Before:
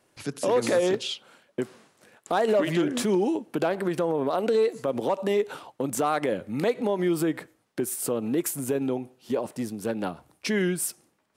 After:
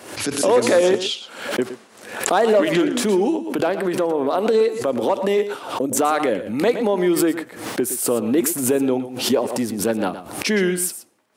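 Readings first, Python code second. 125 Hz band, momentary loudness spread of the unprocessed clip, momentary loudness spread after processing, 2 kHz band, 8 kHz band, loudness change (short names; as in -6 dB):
+2.5 dB, 11 LU, 10 LU, +8.0 dB, +9.5 dB, +7.0 dB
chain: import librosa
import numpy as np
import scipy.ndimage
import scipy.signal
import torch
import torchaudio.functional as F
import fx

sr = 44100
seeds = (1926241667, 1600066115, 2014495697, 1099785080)

y = scipy.signal.sosfilt(scipy.signal.butter(2, 110.0, 'highpass', fs=sr, output='sos'), x)
y = fx.spec_box(y, sr, start_s=5.67, length_s=0.29, low_hz=710.0, high_hz=5500.0, gain_db=-9)
y = fx.peak_eq(y, sr, hz=150.0, db=-12.5, octaves=0.31)
y = fx.rider(y, sr, range_db=3, speed_s=2.0)
y = y + 10.0 ** (-12.5 / 20.0) * np.pad(y, (int(117 * sr / 1000.0), 0))[:len(y)]
y = fx.pre_swell(y, sr, db_per_s=82.0)
y = y * librosa.db_to_amplitude(6.0)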